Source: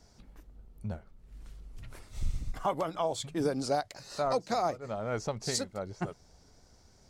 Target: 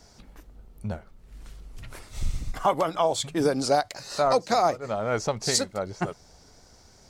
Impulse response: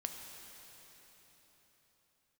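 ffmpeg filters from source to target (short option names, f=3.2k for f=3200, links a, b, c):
-filter_complex "[0:a]lowshelf=f=340:g=-5,asplit=2[a][b];[1:a]atrim=start_sample=2205,atrim=end_sample=3528[c];[b][c]afir=irnorm=-1:irlink=0,volume=-18dB[d];[a][d]amix=inputs=2:normalize=0,volume=8dB"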